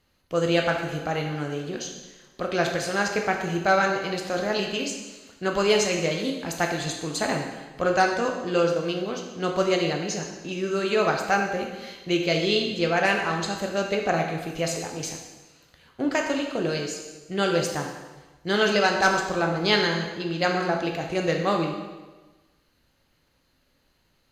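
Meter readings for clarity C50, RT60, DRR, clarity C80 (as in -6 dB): 4.5 dB, 1.2 s, 1.5 dB, 6.5 dB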